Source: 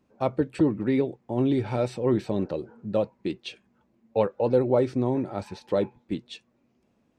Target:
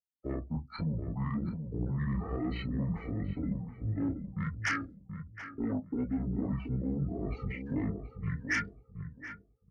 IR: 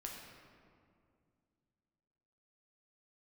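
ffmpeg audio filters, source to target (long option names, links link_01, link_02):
-filter_complex "[0:a]agate=range=-22dB:threshold=-55dB:ratio=16:detection=peak,afftdn=noise_reduction=32:noise_floor=-44,lowshelf=frequency=78:gain=10,areverse,acompressor=threshold=-36dB:ratio=4,areverse,alimiter=level_in=10.5dB:limit=-24dB:level=0:latency=1:release=269,volume=-10.5dB,acrossover=split=360|3000[link_01][link_02][link_03];[link_01]acompressor=threshold=-44dB:ratio=8[link_04];[link_04][link_02][link_03]amix=inputs=3:normalize=0,crystalizer=i=5.5:c=0,flanger=delay=16.5:depth=7.6:speed=1.5,atempo=0.74,aeval=exprs='0.0398*sin(PI/2*2.51*val(0)/0.0398)':channel_layout=same,asetrate=22696,aresample=44100,atempo=1.94306,asplit=2[link_05][link_06];[link_06]adelay=728,lowpass=frequency=1000:poles=1,volume=-7dB,asplit=2[link_07][link_08];[link_08]adelay=728,lowpass=frequency=1000:poles=1,volume=0.24,asplit=2[link_09][link_10];[link_10]adelay=728,lowpass=frequency=1000:poles=1,volume=0.24[link_11];[link_05][link_07][link_09][link_11]amix=inputs=4:normalize=0,volume=2.5dB"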